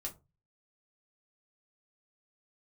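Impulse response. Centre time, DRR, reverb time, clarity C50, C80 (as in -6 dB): 11 ms, -1.0 dB, 0.25 s, 16.0 dB, 24.0 dB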